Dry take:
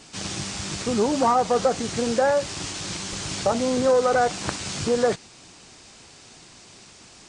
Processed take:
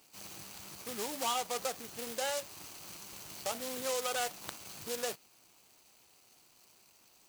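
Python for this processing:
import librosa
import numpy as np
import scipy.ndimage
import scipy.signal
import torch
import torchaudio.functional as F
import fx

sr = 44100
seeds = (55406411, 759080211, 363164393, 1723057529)

y = scipy.ndimage.median_filter(x, 25, mode='constant')
y = scipy.signal.lfilter([1.0, -0.97], [1.0], y)
y = F.gain(torch.from_numpy(y), 5.0).numpy()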